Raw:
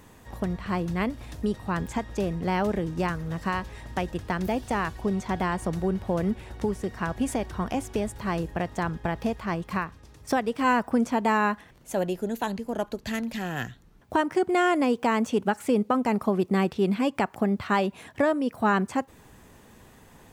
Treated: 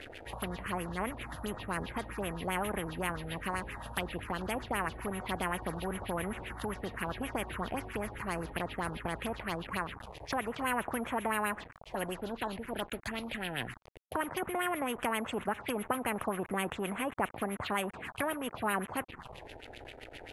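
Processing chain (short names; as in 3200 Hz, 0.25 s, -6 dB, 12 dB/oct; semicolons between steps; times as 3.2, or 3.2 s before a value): bit-crush 8-bit; careless resampling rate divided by 4×, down filtered, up zero stuff; envelope phaser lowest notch 160 Hz, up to 4700 Hz, full sweep at -15.5 dBFS; LFO low-pass sine 7.6 Hz 760–3100 Hz; spectral compressor 2:1; gain -7.5 dB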